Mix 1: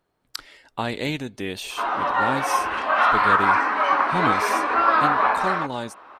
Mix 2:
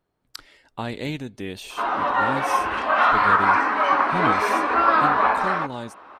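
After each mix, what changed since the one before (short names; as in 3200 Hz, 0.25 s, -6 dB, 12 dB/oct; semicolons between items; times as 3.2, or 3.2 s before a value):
speech -5.0 dB; master: add low shelf 340 Hz +5.5 dB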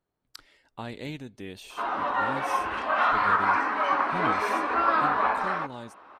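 speech -7.5 dB; background -5.5 dB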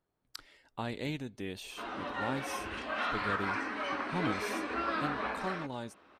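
background: add bell 970 Hz -15 dB 1.7 oct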